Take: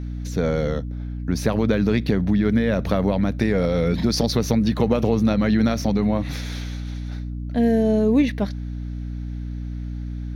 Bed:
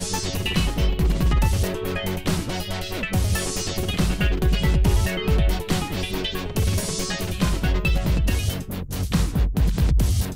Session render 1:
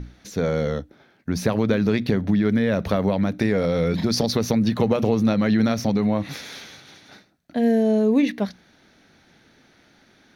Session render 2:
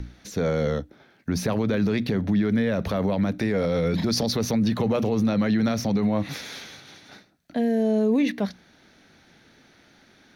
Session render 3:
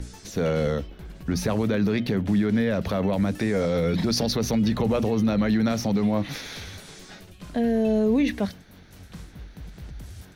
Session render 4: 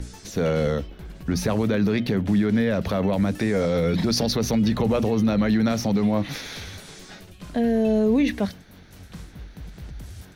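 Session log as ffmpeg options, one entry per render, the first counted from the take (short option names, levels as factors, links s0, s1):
-af "bandreject=f=60:t=h:w=6,bandreject=f=120:t=h:w=6,bandreject=f=180:t=h:w=6,bandreject=f=240:t=h:w=6,bandreject=f=300:t=h:w=6"
-filter_complex "[0:a]acrossover=split=330|1000|1400[s0][s1][s2][s3];[s3]acompressor=mode=upward:threshold=0.00141:ratio=2.5[s4];[s0][s1][s2][s4]amix=inputs=4:normalize=0,alimiter=limit=0.178:level=0:latency=1:release=17"
-filter_complex "[1:a]volume=0.0944[s0];[0:a][s0]amix=inputs=2:normalize=0"
-af "volume=1.19"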